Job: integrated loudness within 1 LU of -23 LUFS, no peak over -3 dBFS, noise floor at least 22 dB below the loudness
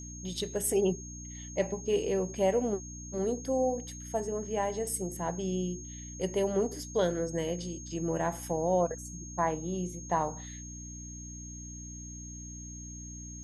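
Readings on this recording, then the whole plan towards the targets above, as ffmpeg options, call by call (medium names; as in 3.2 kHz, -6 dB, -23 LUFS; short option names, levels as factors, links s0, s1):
hum 60 Hz; highest harmonic 300 Hz; hum level -42 dBFS; steady tone 6.5 kHz; tone level -45 dBFS; loudness -33.0 LUFS; peak level -16.0 dBFS; loudness target -23.0 LUFS
-> -af "bandreject=f=60:t=h:w=4,bandreject=f=120:t=h:w=4,bandreject=f=180:t=h:w=4,bandreject=f=240:t=h:w=4,bandreject=f=300:t=h:w=4"
-af "bandreject=f=6500:w=30"
-af "volume=3.16"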